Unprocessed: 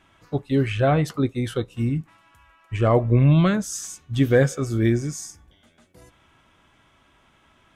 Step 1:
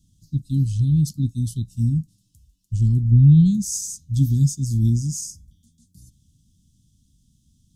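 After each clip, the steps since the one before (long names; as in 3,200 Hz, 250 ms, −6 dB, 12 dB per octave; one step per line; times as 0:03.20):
inverse Chebyshev band-stop filter 460–2,300 Hz, stop band 50 dB
level +5 dB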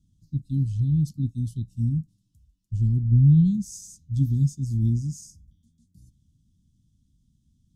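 high-shelf EQ 2,600 Hz −11 dB
level −4 dB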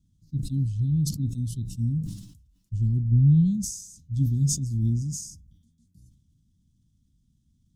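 level that may fall only so fast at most 71 dB per second
level −2 dB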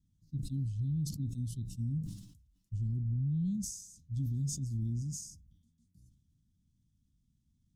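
brickwall limiter −20.5 dBFS, peak gain reduction 9 dB
level −7.5 dB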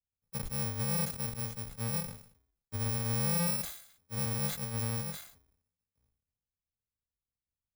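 samples in bit-reversed order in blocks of 128 samples
multiband upward and downward expander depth 70%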